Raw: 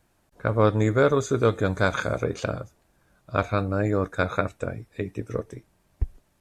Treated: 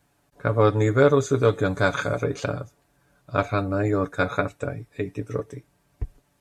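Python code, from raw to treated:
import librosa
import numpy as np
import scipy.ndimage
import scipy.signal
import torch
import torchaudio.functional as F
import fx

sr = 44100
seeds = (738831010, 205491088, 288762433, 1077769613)

y = scipy.signal.sosfilt(scipy.signal.butter(2, 41.0, 'highpass', fs=sr, output='sos'), x)
y = y + 0.55 * np.pad(y, (int(7.0 * sr / 1000.0), 0))[:len(y)]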